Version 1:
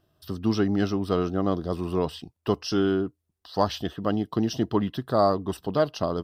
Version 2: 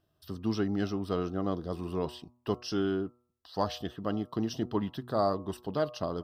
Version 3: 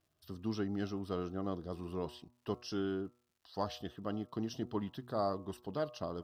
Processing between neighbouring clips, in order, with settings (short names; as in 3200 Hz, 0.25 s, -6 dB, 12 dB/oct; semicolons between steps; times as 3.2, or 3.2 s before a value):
de-hum 121.4 Hz, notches 11; gain -6.5 dB
crackle 240/s -59 dBFS; gain -6.5 dB